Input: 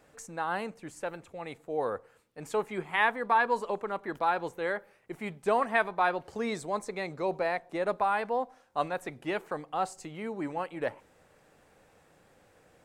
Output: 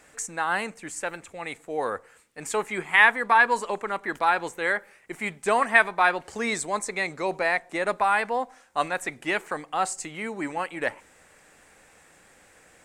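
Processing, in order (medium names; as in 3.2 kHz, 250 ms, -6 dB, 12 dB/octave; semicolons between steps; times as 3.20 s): graphic EQ 125/500/2000/8000 Hz -6/-3/+7/+11 dB; trim +4.5 dB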